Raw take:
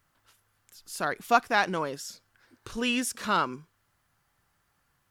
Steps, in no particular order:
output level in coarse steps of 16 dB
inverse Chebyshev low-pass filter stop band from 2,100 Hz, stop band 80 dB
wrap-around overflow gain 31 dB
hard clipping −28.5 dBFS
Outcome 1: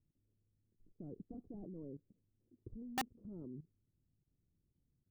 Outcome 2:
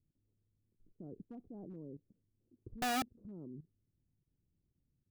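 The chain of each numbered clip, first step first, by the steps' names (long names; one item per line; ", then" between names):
hard clipping, then inverse Chebyshev low-pass filter, then output level in coarse steps, then wrap-around overflow
inverse Chebyshev low-pass filter, then hard clipping, then output level in coarse steps, then wrap-around overflow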